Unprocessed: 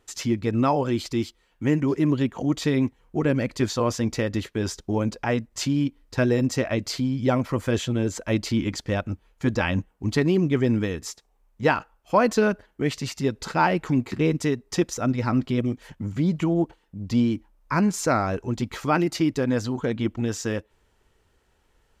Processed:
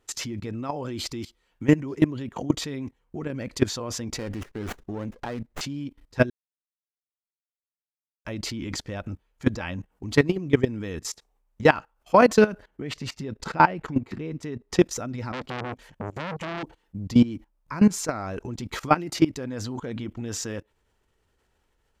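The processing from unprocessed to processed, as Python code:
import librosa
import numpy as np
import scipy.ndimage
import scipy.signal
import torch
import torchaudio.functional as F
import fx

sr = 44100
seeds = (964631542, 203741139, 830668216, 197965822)

y = fx.running_max(x, sr, window=9, at=(4.18, 5.61))
y = fx.high_shelf(y, sr, hz=4200.0, db=-9.5, at=(12.67, 14.79), fade=0.02)
y = fx.transformer_sat(y, sr, knee_hz=2200.0, at=(15.32, 16.63))
y = fx.edit(y, sr, fx.silence(start_s=6.3, length_s=1.95), tone=tone)
y = fx.level_steps(y, sr, step_db=19)
y = F.gain(torch.from_numpy(y), 6.0).numpy()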